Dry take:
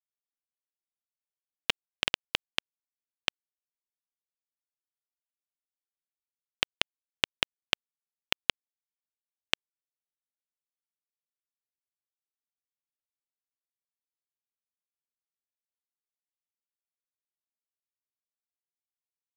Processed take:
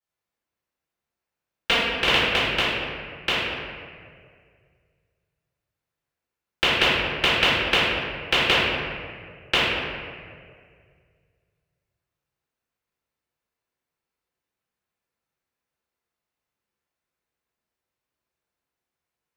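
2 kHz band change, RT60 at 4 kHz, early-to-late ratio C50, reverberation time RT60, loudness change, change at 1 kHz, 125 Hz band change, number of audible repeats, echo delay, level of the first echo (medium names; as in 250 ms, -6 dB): +13.5 dB, 1.2 s, -3.0 dB, 2.0 s, +10.5 dB, +16.0 dB, +18.5 dB, no echo, no echo, no echo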